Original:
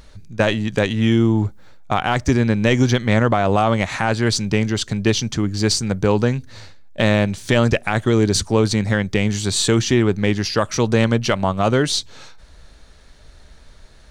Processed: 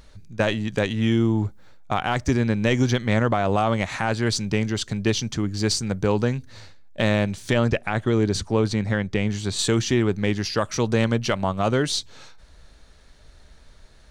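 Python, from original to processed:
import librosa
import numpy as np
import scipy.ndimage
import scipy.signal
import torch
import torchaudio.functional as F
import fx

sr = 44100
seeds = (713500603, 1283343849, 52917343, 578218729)

y = fx.high_shelf(x, sr, hz=5600.0, db=-10.0, at=(7.53, 9.59))
y = y * 10.0 ** (-4.5 / 20.0)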